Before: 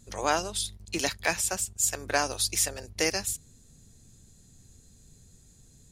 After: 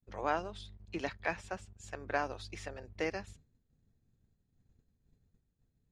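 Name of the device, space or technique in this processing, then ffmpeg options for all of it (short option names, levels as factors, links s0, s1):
hearing-loss simulation: -af "lowpass=2100,agate=range=0.0224:threshold=0.00447:ratio=3:detection=peak,volume=0.501"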